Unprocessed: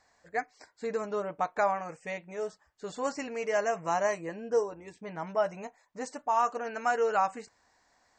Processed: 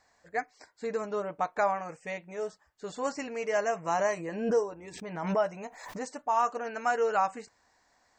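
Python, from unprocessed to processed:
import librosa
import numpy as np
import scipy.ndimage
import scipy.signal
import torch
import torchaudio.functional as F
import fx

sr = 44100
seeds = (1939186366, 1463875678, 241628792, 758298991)

y = fx.pre_swell(x, sr, db_per_s=67.0, at=(3.92, 6.11))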